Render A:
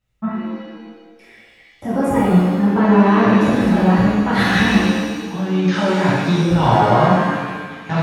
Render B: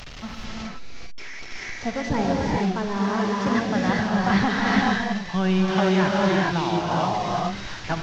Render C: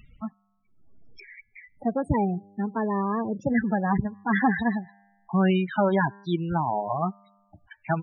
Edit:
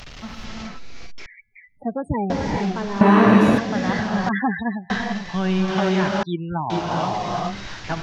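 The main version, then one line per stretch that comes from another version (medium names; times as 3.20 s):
B
1.26–2.30 s: from C
3.01–3.58 s: from A
4.29–4.90 s: from C
6.23–6.70 s: from C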